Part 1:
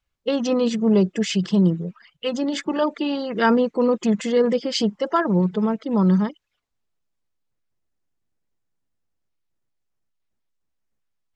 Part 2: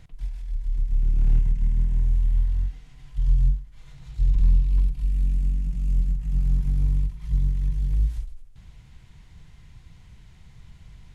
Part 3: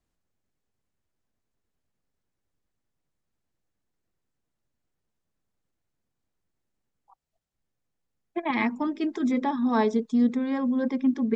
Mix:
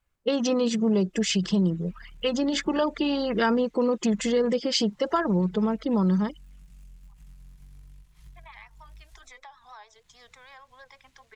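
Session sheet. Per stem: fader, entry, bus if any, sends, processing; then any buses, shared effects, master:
+3.0 dB, 0.00 s, no bus, no send, low-pass opened by the level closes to 2100 Hz, open at -16.5 dBFS
-8.5 dB, 0.95 s, bus A, no send, switching dead time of 0.26 ms
-5.0 dB, 0.00 s, bus A, no send, HPF 700 Hz 24 dB/oct; vibrato 6.5 Hz 74 cents
bus A: 0.0 dB, low shelf 490 Hz -11.5 dB; compressor 5:1, threshold -46 dBFS, peak gain reduction 15 dB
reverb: off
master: high shelf 6000 Hz +8.5 dB; compressor 2.5:1, threshold -24 dBFS, peak gain reduction 9.5 dB

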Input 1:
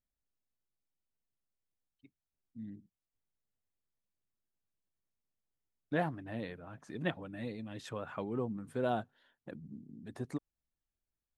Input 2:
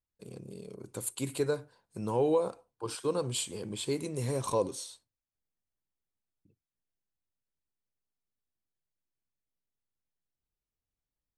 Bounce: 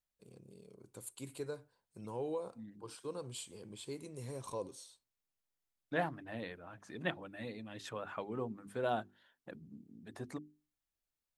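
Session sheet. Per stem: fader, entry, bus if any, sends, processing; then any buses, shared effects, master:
+1.0 dB, 0.00 s, no send, low shelf 430 Hz -6.5 dB; notches 50/100/150/200/250/300/350/400 Hz
-12.0 dB, 0.00 s, no send, dry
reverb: off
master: dry

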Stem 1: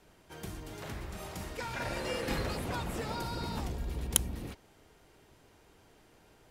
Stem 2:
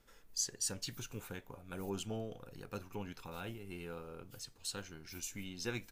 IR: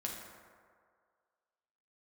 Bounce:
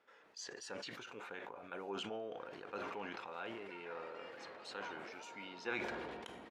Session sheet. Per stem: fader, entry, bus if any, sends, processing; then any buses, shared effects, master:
-16.5 dB, 2.10 s, send -11 dB, dry
+1.5 dB, 0.00 s, send -20.5 dB, dry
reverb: on, RT60 2.0 s, pre-delay 5 ms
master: BPF 480–2400 Hz; sustainer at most 22 dB/s

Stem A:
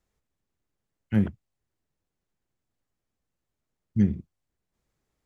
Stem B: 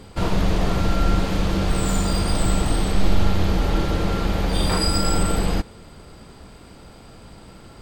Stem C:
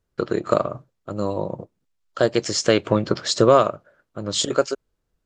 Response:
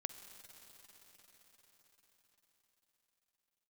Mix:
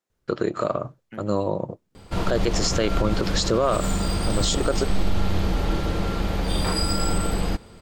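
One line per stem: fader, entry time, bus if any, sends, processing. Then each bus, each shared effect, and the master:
-3.0 dB, 0.00 s, no send, HPF 250 Hz; compressor, threshold -35 dBFS, peak gain reduction 12.5 dB
-3.0 dB, 1.95 s, no send, dry
+1.5 dB, 0.10 s, no send, dry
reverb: off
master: limiter -11.5 dBFS, peak gain reduction 10.5 dB

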